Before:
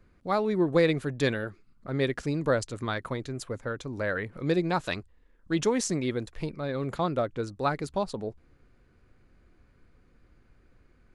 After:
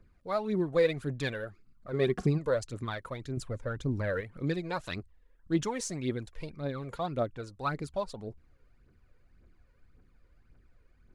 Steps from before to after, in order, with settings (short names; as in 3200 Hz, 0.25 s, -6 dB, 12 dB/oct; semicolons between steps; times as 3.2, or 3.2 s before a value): 1.92–2.37 small resonant body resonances 200/380/730/1100 Hz, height 13 dB -> 16 dB, ringing for 45 ms; 3.37–4.21 low shelf 360 Hz +9 dB; phaser 1.8 Hz, delay 2.2 ms, feedback 57%; gain -7 dB